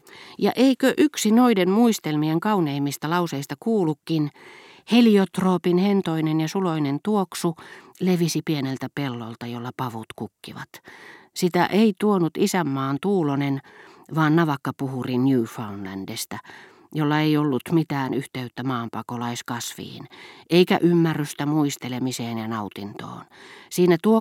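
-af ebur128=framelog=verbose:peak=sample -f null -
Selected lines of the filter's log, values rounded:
Integrated loudness:
  I:         -22.6 LUFS
  Threshold: -33.3 LUFS
Loudness range:
  LRA:         5.0 LU
  Threshold: -43.6 LUFS
  LRA low:   -26.4 LUFS
  LRA high:  -21.4 LUFS
Sample peak:
  Peak:       -4.6 dBFS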